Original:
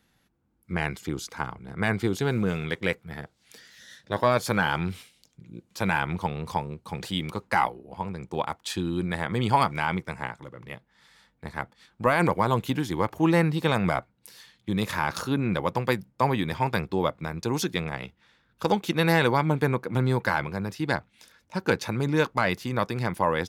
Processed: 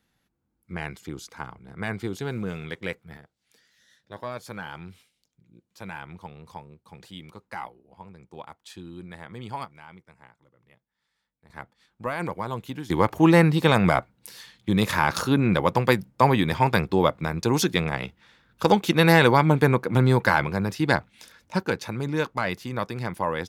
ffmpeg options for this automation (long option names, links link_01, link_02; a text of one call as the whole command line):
ffmpeg -i in.wav -af "asetnsamples=nb_out_samples=441:pad=0,asendcmd='3.17 volume volume -12.5dB;9.65 volume volume -20dB;11.5 volume volume -7.5dB;12.9 volume volume 5dB;21.63 volume volume -2.5dB',volume=-5dB" out.wav